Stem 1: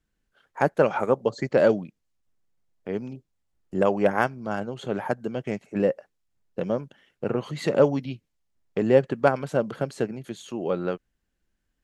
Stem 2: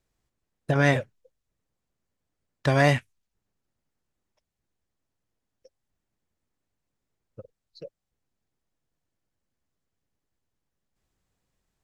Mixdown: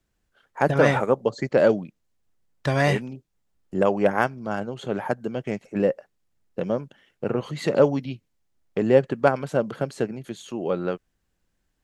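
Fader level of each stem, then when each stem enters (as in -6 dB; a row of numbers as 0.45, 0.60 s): +1.0, -1.0 dB; 0.00, 0.00 s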